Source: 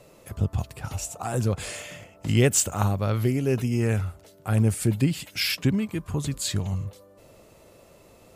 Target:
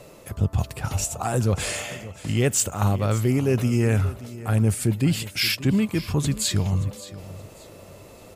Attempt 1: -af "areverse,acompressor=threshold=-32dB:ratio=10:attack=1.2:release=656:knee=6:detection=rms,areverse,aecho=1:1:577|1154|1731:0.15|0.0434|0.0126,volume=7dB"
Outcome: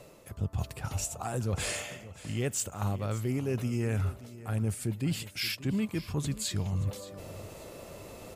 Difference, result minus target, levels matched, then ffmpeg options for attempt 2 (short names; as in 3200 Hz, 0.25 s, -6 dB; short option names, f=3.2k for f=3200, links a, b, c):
compressor: peak gain reduction +10.5 dB
-af "areverse,acompressor=threshold=-20.5dB:ratio=10:attack=1.2:release=656:knee=6:detection=rms,areverse,aecho=1:1:577|1154|1731:0.15|0.0434|0.0126,volume=7dB"